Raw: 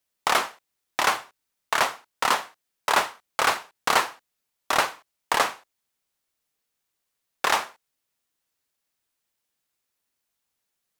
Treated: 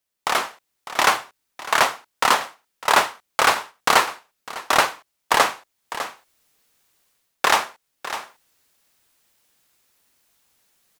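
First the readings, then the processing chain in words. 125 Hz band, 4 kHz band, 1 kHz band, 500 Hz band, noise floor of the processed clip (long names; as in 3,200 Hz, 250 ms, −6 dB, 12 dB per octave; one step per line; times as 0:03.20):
+4.5 dB, +4.5 dB, +4.5 dB, +4.5 dB, −76 dBFS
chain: on a send: single-tap delay 603 ms −17.5 dB
on the sum: automatic gain control gain up to 16 dB
level −1 dB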